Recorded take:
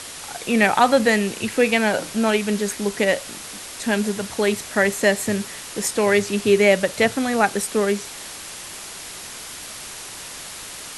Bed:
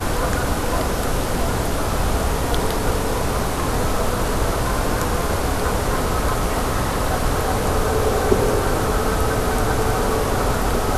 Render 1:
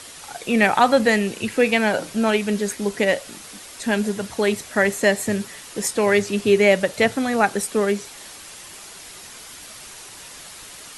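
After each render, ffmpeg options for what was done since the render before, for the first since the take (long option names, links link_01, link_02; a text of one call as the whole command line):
ffmpeg -i in.wav -af "afftdn=noise_reduction=6:noise_floor=-36" out.wav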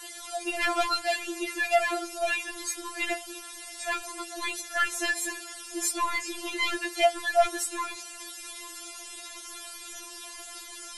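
ffmpeg -i in.wav -af "asoftclip=type=tanh:threshold=-12dB,afftfilt=real='re*4*eq(mod(b,16),0)':imag='im*4*eq(mod(b,16),0)':win_size=2048:overlap=0.75" out.wav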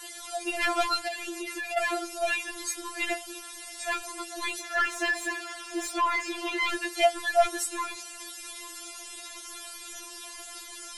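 ffmpeg -i in.wav -filter_complex "[0:a]asplit=3[link_01][link_02][link_03];[link_01]afade=type=out:start_time=1.07:duration=0.02[link_04];[link_02]acompressor=threshold=-31dB:ratio=6:attack=3.2:release=140:knee=1:detection=peak,afade=type=in:start_time=1.07:duration=0.02,afade=type=out:start_time=1.76:duration=0.02[link_05];[link_03]afade=type=in:start_time=1.76:duration=0.02[link_06];[link_04][link_05][link_06]amix=inputs=3:normalize=0,asplit=3[link_07][link_08][link_09];[link_07]afade=type=out:start_time=4.58:duration=0.02[link_10];[link_08]asplit=2[link_11][link_12];[link_12]highpass=frequency=720:poles=1,volume=16dB,asoftclip=type=tanh:threshold=-15.5dB[link_13];[link_11][link_13]amix=inputs=2:normalize=0,lowpass=frequency=1400:poles=1,volume=-6dB,afade=type=in:start_time=4.58:duration=0.02,afade=type=out:start_time=6.68:duration=0.02[link_14];[link_09]afade=type=in:start_time=6.68:duration=0.02[link_15];[link_10][link_14][link_15]amix=inputs=3:normalize=0" out.wav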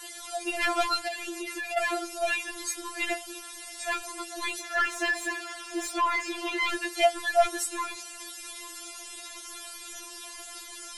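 ffmpeg -i in.wav -af anull out.wav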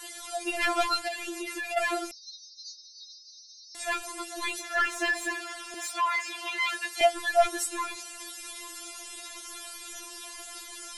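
ffmpeg -i in.wav -filter_complex "[0:a]asettb=1/sr,asplit=3[link_01][link_02][link_03];[link_01]atrim=end=2.114[link_04];[link_02]atrim=start=2.11:end=3.75,asetpts=PTS-STARTPTS,afade=type=in:duration=0.004:curve=qsin,afade=type=out:start_time=1.636:duration=0.004:curve=qsin,asuperpass=centerf=4900:order=20:qfactor=2.1[link_05];[link_03]atrim=start=3.746[link_06];[link_04][link_05]acrossfade=duration=0.004:curve1=hsin:curve2=qsin[link_07];[link_07][link_06]acrossfade=duration=0.004:curve1=qsin:curve2=hsin,asettb=1/sr,asplit=3[link_08][link_09][link_10];[link_08]atrim=end=5.744[link_11];[link_09]atrim=start=5.74:end=7.01,asetpts=PTS-STARTPTS,afade=type=in:duration=0.004:curve=qsin,afade=type=out:start_time=1.266:duration=0.004:curve=qsin,highpass=760[link_12];[link_10]atrim=start=7.006[link_13];[link_11][link_12]acrossfade=duration=0.004:curve1=hsin:curve2=qsin[link_14];[link_14][link_13]acrossfade=duration=0.004:curve1=qsin:curve2=hsin" out.wav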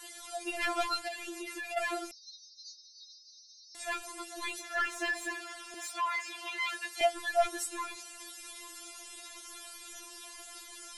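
ffmpeg -i in.wav -af "volume=-5.5dB" out.wav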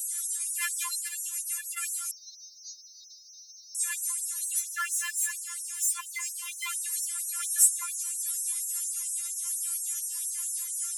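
ffmpeg -i in.wav -af "aexciter=amount=7.9:drive=5.9:freq=6400,afftfilt=real='re*gte(b*sr/1024,890*pow(5400/890,0.5+0.5*sin(2*PI*4.3*pts/sr)))':imag='im*gte(b*sr/1024,890*pow(5400/890,0.5+0.5*sin(2*PI*4.3*pts/sr)))':win_size=1024:overlap=0.75" out.wav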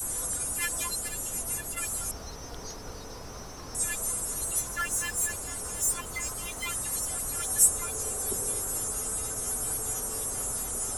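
ffmpeg -i in.wav -i bed.wav -filter_complex "[1:a]volume=-21.5dB[link_01];[0:a][link_01]amix=inputs=2:normalize=0" out.wav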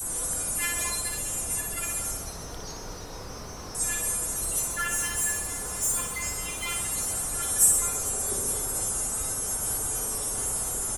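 ffmpeg -i in.wav -filter_complex "[0:a]asplit=2[link_01][link_02];[link_02]adelay=31,volume=-10.5dB[link_03];[link_01][link_03]amix=inputs=2:normalize=0,aecho=1:1:60|132|218.4|322.1|446.5:0.631|0.398|0.251|0.158|0.1" out.wav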